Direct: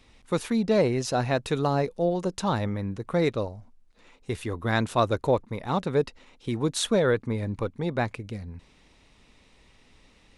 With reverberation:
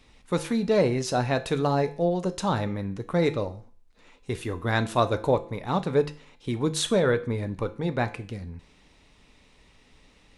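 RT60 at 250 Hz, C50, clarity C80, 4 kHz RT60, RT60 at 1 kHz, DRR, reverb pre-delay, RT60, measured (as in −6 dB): 0.45 s, 16.0 dB, 20.5 dB, 0.40 s, 0.45 s, 9.0 dB, 6 ms, 0.45 s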